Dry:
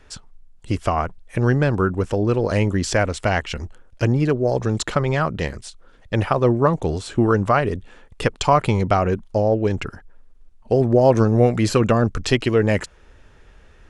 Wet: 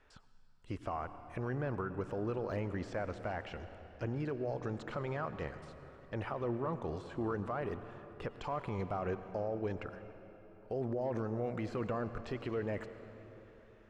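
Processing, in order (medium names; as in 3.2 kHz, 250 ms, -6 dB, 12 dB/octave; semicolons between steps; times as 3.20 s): de-esser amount 100%; low-pass 1.4 kHz 6 dB/octave; bass shelf 490 Hz -11.5 dB; peak limiter -21.5 dBFS, peak gain reduction 10 dB; on a send: reverberation RT60 3.9 s, pre-delay 85 ms, DRR 10.5 dB; on the sum: trim -7 dB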